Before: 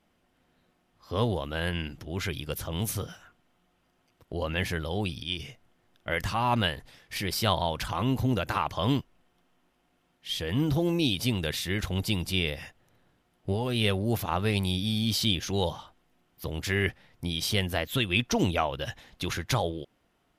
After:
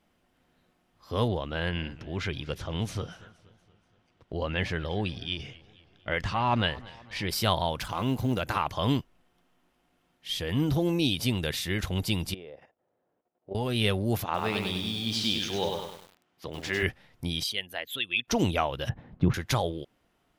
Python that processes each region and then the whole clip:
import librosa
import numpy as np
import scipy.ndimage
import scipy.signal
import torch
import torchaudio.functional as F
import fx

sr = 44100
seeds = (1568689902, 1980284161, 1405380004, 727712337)

y = fx.chain(x, sr, fx.lowpass(hz=4900.0, slope=12),
    fx.echo_warbled(ms=236, feedback_pct=52, rate_hz=2.8, cents=127, wet_db=-21.0), at=(1.28, 7.29))
y = fx.chain(y, sr, fx.law_mismatch(coded='A'),
    fx.peak_eq(hz=68.0, db=-5.0, octaves=1.0),
    fx.notch(hz=1800.0, q=18.0), at=(7.8, 8.41))
y = fx.chain(y, sr, fx.bandpass_q(hz=540.0, q=1.6),
    fx.level_steps(step_db=11), at=(12.34, 13.55))
y = fx.chain(y, sr, fx.highpass(hz=300.0, slope=6),
    fx.air_absorb(metres=66.0),
    fx.echo_crushed(ms=99, feedback_pct=55, bits=8, wet_db=-3.5), at=(14.24, 16.83))
y = fx.chain(y, sr, fx.envelope_sharpen(power=1.5),
    fx.highpass(hz=1500.0, slope=6),
    fx.notch(hz=5500.0, q=14.0), at=(17.43, 18.28))
y = fx.chain(y, sr, fx.lowpass(hz=1300.0, slope=12),
    fx.peak_eq(hz=150.0, db=14.5, octaves=2.1), at=(18.89, 19.34))